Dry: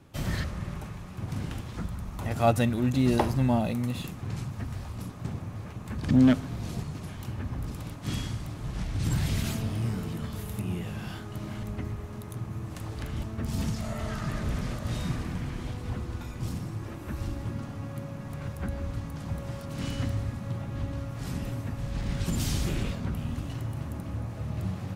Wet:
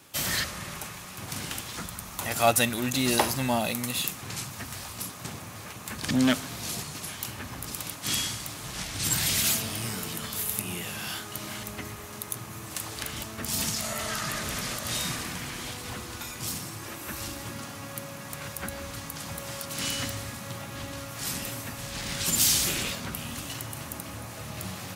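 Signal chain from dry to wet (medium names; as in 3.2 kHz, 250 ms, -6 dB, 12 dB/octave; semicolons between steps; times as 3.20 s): tilt EQ +4 dB/octave; in parallel at -3.5 dB: saturation -19 dBFS, distortion -17 dB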